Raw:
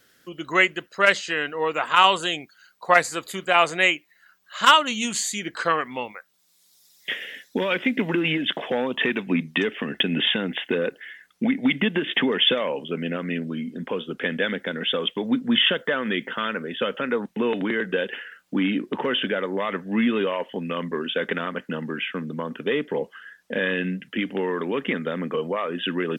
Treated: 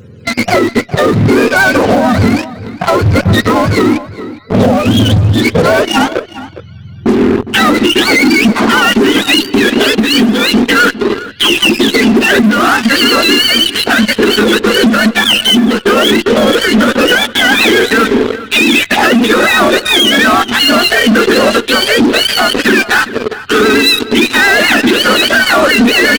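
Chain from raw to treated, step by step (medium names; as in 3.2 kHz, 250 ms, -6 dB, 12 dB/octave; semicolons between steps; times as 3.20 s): spectrum inverted on a logarithmic axis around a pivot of 850 Hz; on a send: feedback echo behind a high-pass 202 ms, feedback 77%, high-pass 2.6 kHz, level -22.5 dB; on the sum: vibrato 8.8 Hz 43 cents; in parallel at -7.5 dB: fuzz box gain 36 dB, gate -40 dBFS; on the sum: compression 12:1, threshold -25 dBFS, peak gain reduction 18.5 dB; echo from a far wall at 70 m, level -16 dB; loudness maximiser +21 dB; trim -1 dB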